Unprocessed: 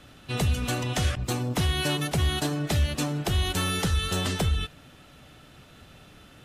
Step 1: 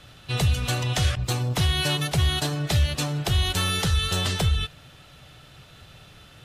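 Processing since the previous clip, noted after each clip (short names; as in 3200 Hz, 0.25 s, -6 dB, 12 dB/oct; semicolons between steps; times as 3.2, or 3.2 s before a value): graphic EQ 125/250/4000 Hz +5/-8/+4 dB; gain +1.5 dB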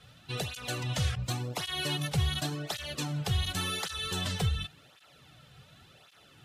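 tape flanging out of phase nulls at 0.9 Hz, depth 3.5 ms; gain -4.5 dB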